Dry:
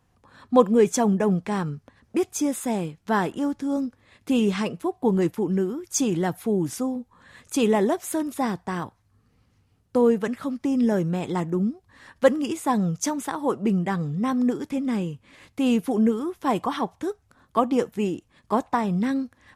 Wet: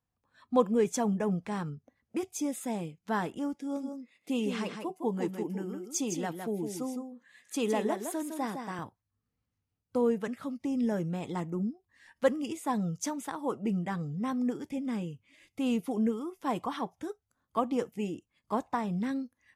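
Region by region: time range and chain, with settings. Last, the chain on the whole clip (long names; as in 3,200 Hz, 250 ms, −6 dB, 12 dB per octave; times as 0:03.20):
0:03.54–0:08.79: high-pass filter 210 Hz + single-tap delay 160 ms −6.5 dB
whole clip: noise reduction from a noise print of the clip's start 13 dB; notch filter 380 Hz, Q 12; level −8 dB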